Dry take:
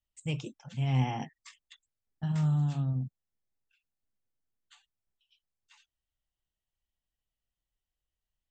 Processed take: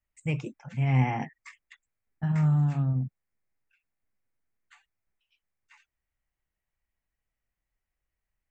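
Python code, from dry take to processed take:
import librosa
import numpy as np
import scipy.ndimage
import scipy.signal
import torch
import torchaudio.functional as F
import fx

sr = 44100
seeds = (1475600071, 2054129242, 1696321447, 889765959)

y = fx.high_shelf_res(x, sr, hz=2700.0, db=-6.5, q=3.0)
y = F.gain(torch.from_numpy(y), 4.0).numpy()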